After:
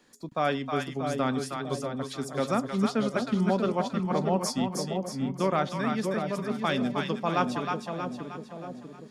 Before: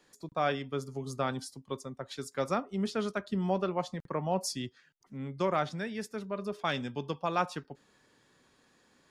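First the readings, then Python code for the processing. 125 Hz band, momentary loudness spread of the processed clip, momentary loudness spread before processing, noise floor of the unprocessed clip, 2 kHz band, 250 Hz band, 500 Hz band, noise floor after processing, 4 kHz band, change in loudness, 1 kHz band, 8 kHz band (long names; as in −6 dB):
+6.0 dB, 8 LU, 10 LU, −68 dBFS, +4.5 dB, +8.0 dB, +4.5 dB, −46 dBFS, +4.5 dB, +5.0 dB, +4.5 dB, +4.5 dB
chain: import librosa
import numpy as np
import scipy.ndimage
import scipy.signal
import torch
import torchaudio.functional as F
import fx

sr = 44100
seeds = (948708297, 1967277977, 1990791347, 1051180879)

y = fx.peak_eq(x, sr, hz=240.0, db=8.0, octaves=0.4)
y = fx.echo_split(y, sr, split_hz=680.0, low_ms=640, high_ms=314, feedback_pct=52, wet_db=-4)
y = y * librosa.db_to_amplitude(2.5)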